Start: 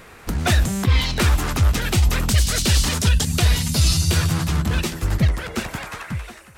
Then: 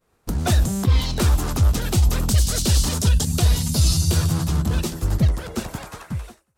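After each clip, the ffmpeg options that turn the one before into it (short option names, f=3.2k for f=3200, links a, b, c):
-af "agate=range=-33dB:threshold=-31dB:ratio=3:detection=peak,equalizer=f=2.1k:w=0.96:g=-10"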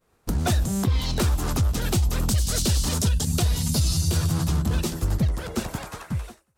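-af "acompressor=threshold=-18dB:ratio=8,asoftclip=type=hard:threshold=-15dB"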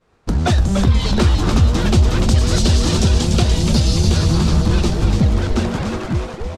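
-filter_complex "[0:a]lowpass=5.2k,asplit=2[a][b];[b]asplit=8[c][d][e][f][g][h][i][j];[c]adelay=293,afreqshift=-140,volume=-5dB[k];[d]adelay=586,afreqshift=-280,volume=-9.9dB[l];[e]adelay=879,afreqshift=-420,volume=-14.8dB[m];[f]adelay=1172,afreqshift=-560,volume=-19.6dB[n];[g]adelay=1465,afreqshift=-700,volume=-24.5dB[o];[h]adelay=1758,afreqshift=-840,volume=-29.4dB[p];[i]adelay=2051,afreqshift=-980,volume=-34.3dB[q];[j]adelay=2344,afreqshift=-1120,volume=-39.2dB[r];[k][l][m][n][o][p][q][r]amix=inputs=8:normalize=0[s];[a][s]amix=inputs=2:normalize=0,volume=7dB"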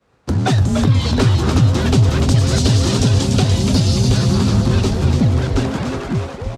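-af "afreqshift=35"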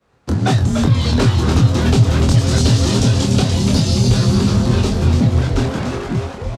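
-filter_complex "[0:a]asplit=2[a][b];[b]adelay=25,volume=-4.5dB[c];[a][c]amix=inputs=2:normalize=0,volume=-1dB"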